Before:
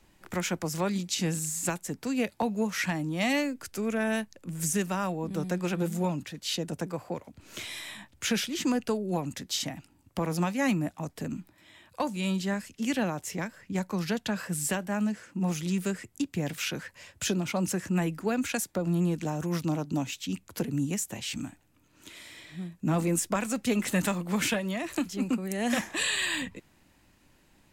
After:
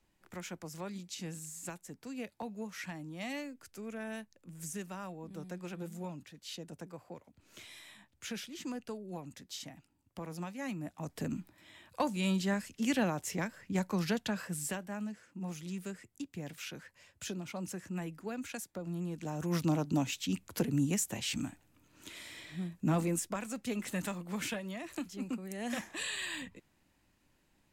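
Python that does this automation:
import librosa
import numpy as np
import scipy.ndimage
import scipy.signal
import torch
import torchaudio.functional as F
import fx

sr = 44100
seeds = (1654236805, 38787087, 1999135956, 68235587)

y = fx.gain(x, sr, db=fx.line((10.74, -13.0), (11.17, -2.0), (14.05, -2.0), (15.09, -11.5), (19.09, -11.5), (19.6, -1.0), (22.77, -1.0), (23.38, -9.5)))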